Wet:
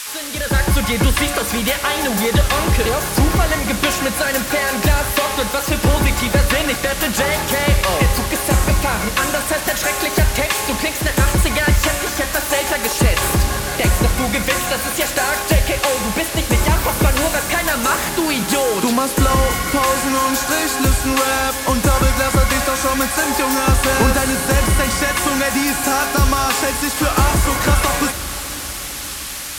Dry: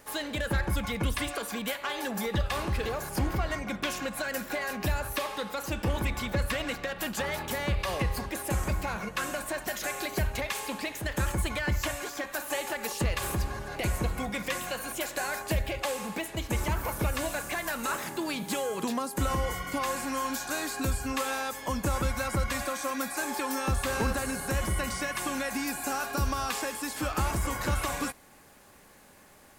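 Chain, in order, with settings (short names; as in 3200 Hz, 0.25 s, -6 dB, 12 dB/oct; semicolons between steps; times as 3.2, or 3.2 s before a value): AGC gain up to 12 dB; band noise 1100–13000 Hz -31 dBFS; on a send: diffused feedback echo 0.526 s, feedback 58%, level -15 dB; on the sum: gain +2 dB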